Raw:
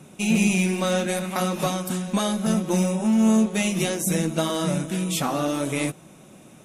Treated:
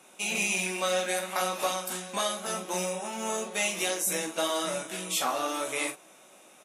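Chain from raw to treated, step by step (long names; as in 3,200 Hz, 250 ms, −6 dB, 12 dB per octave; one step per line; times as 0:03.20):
high-pass filter 590 Hz 12 dB per octave
ambience of single reflections 16 ms −6 dB, 44 ms −7.5 dB
level −2.5 dB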